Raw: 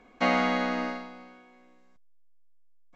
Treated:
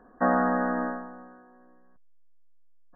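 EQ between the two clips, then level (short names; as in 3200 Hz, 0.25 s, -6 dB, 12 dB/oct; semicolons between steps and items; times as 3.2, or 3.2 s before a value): brick-wall FIR low-pass 1900 Hz; +2.0 dB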